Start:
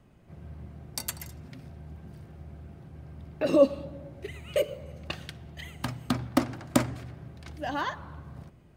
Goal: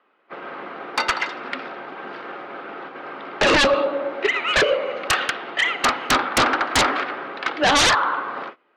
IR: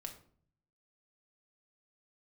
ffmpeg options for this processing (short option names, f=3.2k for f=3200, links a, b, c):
-filter_complex "[0:a]asplit=2[a][b];[b]highpass=f=720:p=1,volume=22dB,asoftclip=type=tanh:threshold=-6dB[c];[a][c]amix=inputs=2:normalize=0,lowpass=f=2.2k:p=1,volume=-6dB,highpass=f=330:w=0.5412,highpass=f=330:w=1.3066,equalizer=f=360:t=q:w=4:g=-4,equalizer=f=650:t=q:w=4:g=-7,equalizer=f=1.3k:t=q:w=4:g=7,lowpass=f=3.9k:w=0.5412,lowpass=f=3.9k:w=1.3066,aeval=exprs='0.531*sin(PI/2*6.31*val(0)/0.531)':c=same,agate=range=-22dB:threshold=-28dB:ratio=16:detection=peak,volume=-7dB"